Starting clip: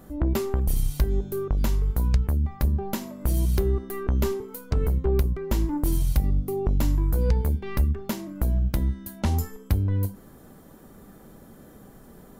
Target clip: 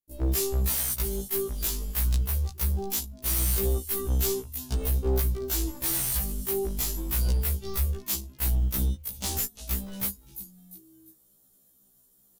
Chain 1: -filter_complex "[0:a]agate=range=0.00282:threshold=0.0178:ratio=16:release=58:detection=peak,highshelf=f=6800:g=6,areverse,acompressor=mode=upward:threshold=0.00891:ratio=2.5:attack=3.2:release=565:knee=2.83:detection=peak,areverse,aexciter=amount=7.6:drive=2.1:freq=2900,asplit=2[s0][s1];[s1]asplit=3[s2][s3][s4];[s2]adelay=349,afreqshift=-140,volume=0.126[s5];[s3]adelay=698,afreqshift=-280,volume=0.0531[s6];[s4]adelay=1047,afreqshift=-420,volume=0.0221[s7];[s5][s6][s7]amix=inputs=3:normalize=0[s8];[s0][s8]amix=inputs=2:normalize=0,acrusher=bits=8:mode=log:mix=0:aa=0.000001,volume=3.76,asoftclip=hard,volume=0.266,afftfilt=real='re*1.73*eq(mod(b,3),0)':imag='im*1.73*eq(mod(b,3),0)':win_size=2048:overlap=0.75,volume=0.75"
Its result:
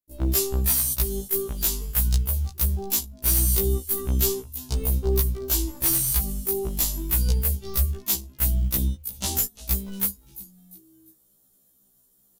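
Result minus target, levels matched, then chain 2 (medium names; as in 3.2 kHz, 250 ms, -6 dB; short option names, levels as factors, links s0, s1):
overload inside the chain: distortion -6 dB
-filter_complex "[0:a]agate=range=0.00282:threshold=0.0178:ratio=16:release=58:detection=peak,highshelf=f=6800:g=6,areverse,acompressor=mode=upward:threshold=0.00891:ratio=2.5:attack=3.2:release=565:knee=2.83:detection=peak,areverse,aexciter=amount=7.6:drive=2.1:freq=2900,asplit=2[s0][s1];[s1]asplit=3[s2][s3][s4];[s2]adelay=349,afreqshift=-140,volume=0.126[s5];[s3]adelay=698,afreqshift=-280,volume=0.0531[s6];[s4]adelay=1047,afreqshift=-420,volume=0.0221[s7];[s5][s6][s7]amix=inputs=3:normalize=0[s8];[s0][s8]amix=inputs=2:normalize=0,acrusher=bits=8:mode=log:mix=0:aa=0.000001,volume=10,asoftclip=hard,volume=0.1,afftfilt=real='re*1.73*eq(mod(b,3),0)':imag='im*1.73*eq(mod(b,3),0)':win_size=2048:overlap=0.75,volume=0.75"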